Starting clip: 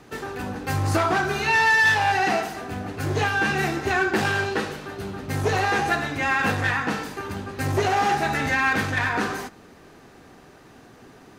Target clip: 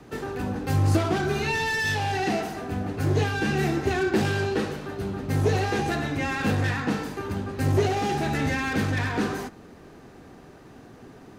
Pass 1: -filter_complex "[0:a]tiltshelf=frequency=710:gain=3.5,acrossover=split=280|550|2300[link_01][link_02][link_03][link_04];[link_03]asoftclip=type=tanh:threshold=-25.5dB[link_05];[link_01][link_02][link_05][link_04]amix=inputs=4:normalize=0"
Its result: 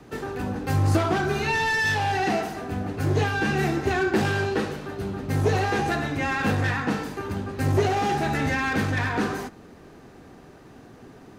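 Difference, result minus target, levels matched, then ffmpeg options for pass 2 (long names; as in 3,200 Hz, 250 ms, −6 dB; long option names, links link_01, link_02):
soft clipping: distortion −5 dB
-filter_complex "[0:a]tiltshelf=frequency=710:gain=3.5,acrossover=split=280|550|2300[link_01][link_02][link_03][link_04];[link_03]asoftclip=type=tanh:threshold=-32.5dB[link_05];[link_01][link_02][link_05][link_04]amix=inputs=4:normalize=0"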